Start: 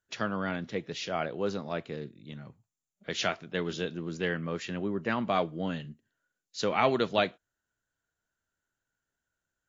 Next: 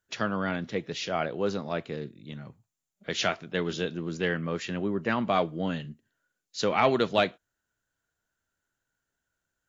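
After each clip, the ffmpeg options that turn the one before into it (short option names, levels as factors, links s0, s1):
-af "acontrast=89,volume=0.596"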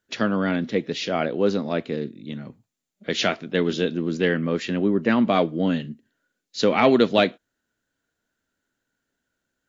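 -af "equalizer=f=250:t=o:w=1:g=11,equalizer=f=500:t=o:w=1:g=5,equalizer=f=2000:t=o:w=1:g=4,equalizer=f=4000:t=o:w=1:g=5"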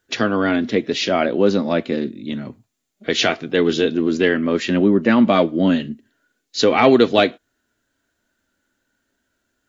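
-filter_complex "[0:a]asplit=2[s0][s1];[s1]alimiter=limit=0.158:level=0:latency=1:release=223,volume=1[s2];[s0][s2]amix=inputs=2:normalize=0,flanger=delay=2.5:depth=1:regen=-54:speed=0.29:shape=triangular,volume=1.88"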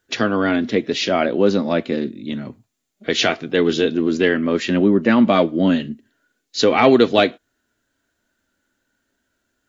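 -af anull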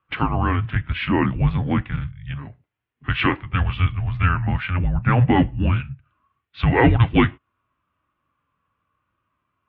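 -af "highpass=f=230:t=q:w=0.5412,highpass=f=230:t=q:w=1.307,lowpass=f=3100:t=q:w=0.5176,lowpass=f=3100:t=q:w=0.7071,lowpass=f=3100:t=q:w=1.932,afreqshift=-360,highpass=58"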